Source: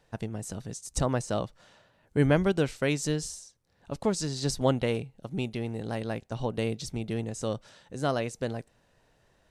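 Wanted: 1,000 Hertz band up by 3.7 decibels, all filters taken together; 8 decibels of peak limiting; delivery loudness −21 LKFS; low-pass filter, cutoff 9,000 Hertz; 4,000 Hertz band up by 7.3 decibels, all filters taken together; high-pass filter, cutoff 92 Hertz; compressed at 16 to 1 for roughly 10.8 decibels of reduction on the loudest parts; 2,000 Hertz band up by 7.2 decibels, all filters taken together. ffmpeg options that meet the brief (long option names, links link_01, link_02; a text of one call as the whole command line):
ffmpeg -i in.wav -af "highpass=92,lowpass=9000,equalizer=frequency=1000:width_type=o:gain=3,equalizer=frequency=2000:width_type=o:gain=6.5,equalizer=frequency=4000:width_type=o:gain=7.5,acompressor=threshold=-27dB:ratio=16,volume=16dB,alimiter=limit=-9dB:level=0:latency=1" out.wav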